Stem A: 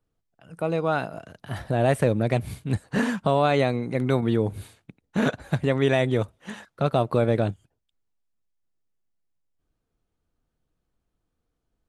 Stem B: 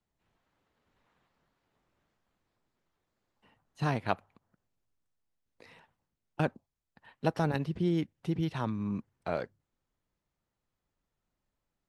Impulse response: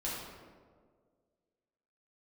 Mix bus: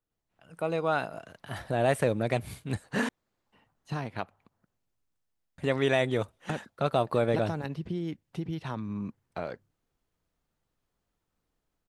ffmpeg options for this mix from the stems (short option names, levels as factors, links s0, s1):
-filter_complex "[0:a]lowshelf=f=350:g=-7,volume=0.447,asplit=3[s0][s1][s2];[s0]atrim=end=3.09,asetpts=PTS-STARTPTS,afade=t=out:st=3.086:d=0.004:c=hsin[s3];[s1]atrim=start=3.09:end=5.58,asetpts=PTS-STARTPTS,volume=0[s4];[s2]atrim=start=5.58,asetpts=PTS-STARTPTS,afade=t=in:d=0.004:c=hsin[s5];[s3][s4][s5]concat=n=3:v=0:a=1[s6];[1:a]acompressor=threshold=0.0251:ratio=3,adelay=100,volume=0.596[s7];[s6][s7]amix=inputs=2:normalize=0,dynaudnorm=f=280:g=3:m=1.88"